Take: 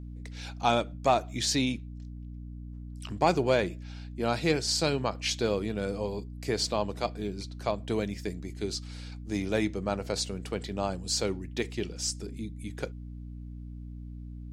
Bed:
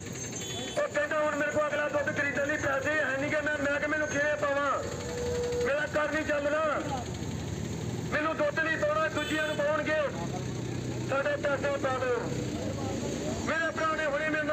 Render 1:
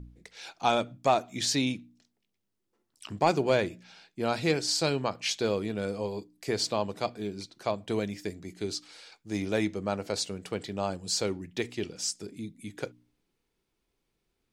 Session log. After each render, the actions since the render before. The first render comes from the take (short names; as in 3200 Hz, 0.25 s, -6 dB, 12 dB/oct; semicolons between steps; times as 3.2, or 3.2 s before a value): de-hum 60 Hz, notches 5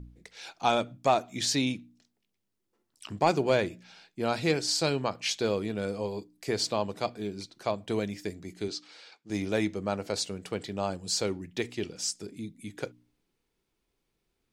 8.68–9.3 BPF 180–5700 Hz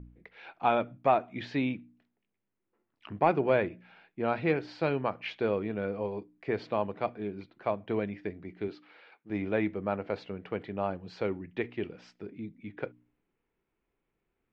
LPF 2500 Hz 24 dB/oct; low shelf 180 Hz -3.5 dB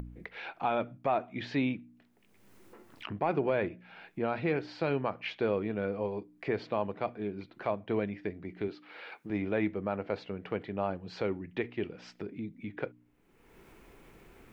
upward compressor, threshold -34 dBFS; limiter -19 dBFS, peak gain reduction 7.5 dB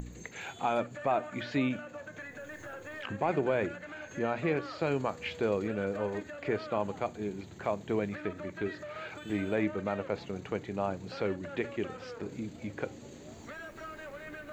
add bed -15.5 dB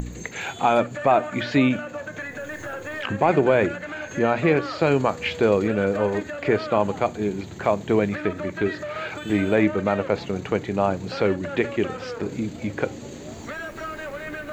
gain +11 dB